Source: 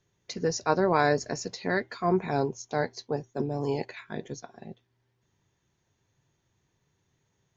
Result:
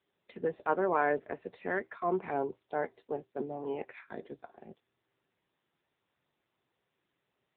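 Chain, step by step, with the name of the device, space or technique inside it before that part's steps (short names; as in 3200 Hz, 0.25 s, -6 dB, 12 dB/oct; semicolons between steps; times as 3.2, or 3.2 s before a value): telephone (BPF 280–3100 Hz; gain -3.5 dB; AMR-NB 7.95 kbps 8000 Hz)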